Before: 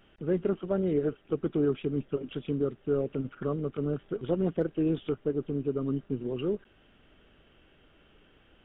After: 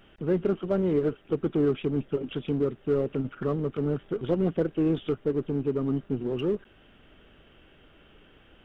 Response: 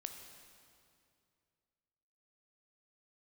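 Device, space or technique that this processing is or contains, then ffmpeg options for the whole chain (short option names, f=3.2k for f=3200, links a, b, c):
parallel distortion: -filter_complex "[0:a]asplit=2[a][b];[b]asoftclip=type=hard:threshold=-34.5dB,volume=-7dB[c];[a][c]amix=inputs=2:normalize=0,volume=1.5dB"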